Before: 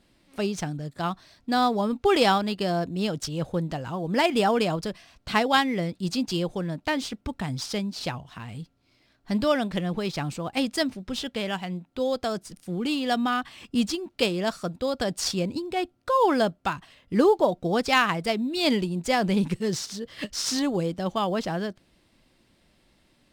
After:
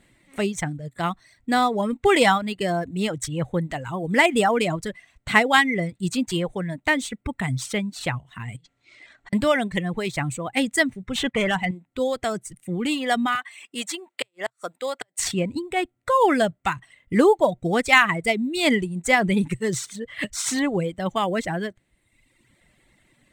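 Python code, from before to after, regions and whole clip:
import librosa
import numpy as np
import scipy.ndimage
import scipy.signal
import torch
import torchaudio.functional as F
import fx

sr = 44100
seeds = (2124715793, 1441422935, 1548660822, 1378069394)

y = fx.chain(x, sr, fx.lowpass(hz=7900.0, slope=24),
    fx.low_shelf(hz=380.0, db=-11.0),
    fx.over_compress(threshold_db=-56.0, ratio=-1.0), at=(8.56, 9.33))
y = fx.chain(y, sr, fx.lowpass(hz=3800.0, slope=6),
    fx.leveller(passes=2), at=(11.15, 11.71))
y = fx.chain(y, sr, fx.highpass(hz=550.0, slope=12),
    fx.gate_flip(shuts_db=-16.0, range_db=-37), at=(13.35, 15.19))
y = fx.dereverb_blind(y, sr, rt60_s=1.1)
y = fx.graphic_eq_31(y, sr, hz=(125, 2000, 5000, 8000), db=(7, 11, -11, 9))
y = F.gain(torch.from_numpy(y), 3.0).numpy()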